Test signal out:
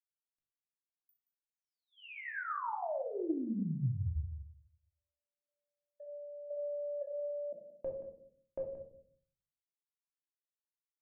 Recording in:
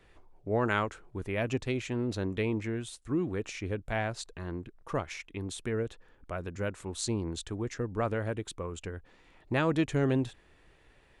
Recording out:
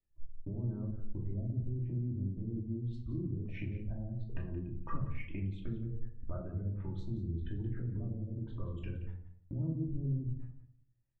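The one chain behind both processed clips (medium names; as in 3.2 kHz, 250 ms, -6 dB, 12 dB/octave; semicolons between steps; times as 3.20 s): spectral gate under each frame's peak -20 dB strong; low-pass that closes with the level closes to 310 Hz, closed at -29.5 dBFS; spectral gate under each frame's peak -30 dB strong; gate -53 dBFS, range -37 dB; tone controls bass +11 dB, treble -6 dB; peak limiter -24.5 dBFS; compression 10:1, threshold -38 dBFS; on a send: delay 176 ms -14 dB; on the sum: simulated room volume 510 m³, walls furnished, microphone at 2.7 m; loudspeaker Doppler distortion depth 0.12 ms; trim -2 dB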